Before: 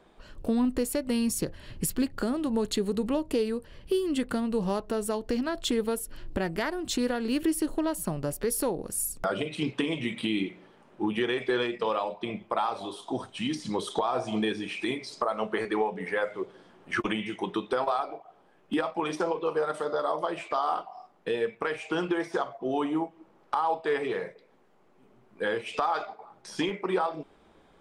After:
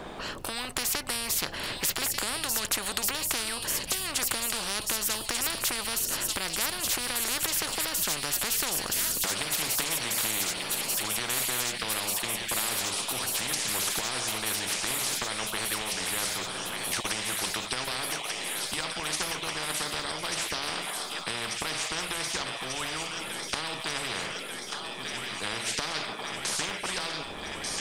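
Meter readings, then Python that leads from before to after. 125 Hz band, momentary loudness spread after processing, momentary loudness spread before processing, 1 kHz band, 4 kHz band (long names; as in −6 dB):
−3.0 dB, 6 LU, 6 LU, −4.0 dB, +9.5 dB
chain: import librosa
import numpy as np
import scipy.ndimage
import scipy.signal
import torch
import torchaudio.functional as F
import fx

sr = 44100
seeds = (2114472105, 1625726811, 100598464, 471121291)

y = fx.echo_wet_highpass(x, sr, ms=1190, feedback_pct=73, hz=3800.0, wet_db=-7.0)
y = fx.spectral_comp(y, sr, ratio=10.0)
y = y * librosa.db_to_amplitude(2.0)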